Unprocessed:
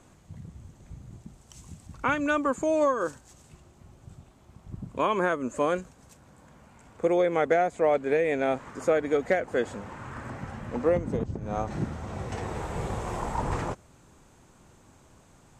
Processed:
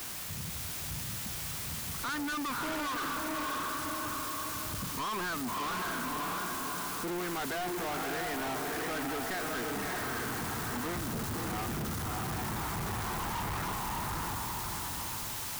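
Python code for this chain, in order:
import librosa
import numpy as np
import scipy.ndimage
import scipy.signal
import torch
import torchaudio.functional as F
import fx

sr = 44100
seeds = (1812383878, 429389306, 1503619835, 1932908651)

p1 = fx.cvsd(x, sr, bps=32000)
p2 = scipy.signal.sosfilt(scipy.signal.butter(2, 2500.0, 'lowpass', fs=sr, output='sos'), p1)
p3 = fx.fixed_phaser(p2, sr, hz=1300.0, stages=4)
p4 = fx.quant_dither(p3, sr, seeds[0], bits=6, dither='triangular')
p5 = p3 + (p4 * 10.0 ** (-10.0 / 20.0))
p6 = fx.low_shelf(p5, sr, hz=210.0, db=-8.0)
p7 = fx.echo_diffused(p6, sr, ms=608, feedback_pct=43, wet_db=-3.5)
p8 = fx.power_curve(p7, sr, exponent=0.7)
p9 = np.clip(p8, -10.0 ** (-31.5 / 20.0), 10.0 ** (-31.5 / 20.0))
y = p9 * 10.0 ** (-2.0 / 20.0)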